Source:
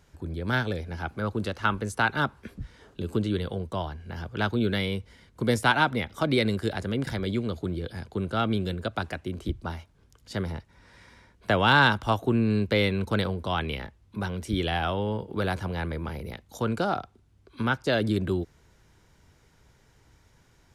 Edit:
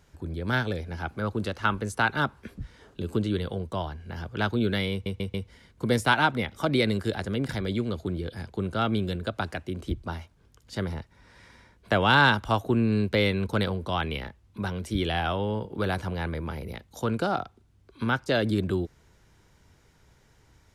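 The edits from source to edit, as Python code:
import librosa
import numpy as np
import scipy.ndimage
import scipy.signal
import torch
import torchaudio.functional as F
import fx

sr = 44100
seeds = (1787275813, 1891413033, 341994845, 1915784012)

y = fx.edit(x, sr, fx.stutter(start_s=4.92, slice_s=0.14, count=4), tone=tone)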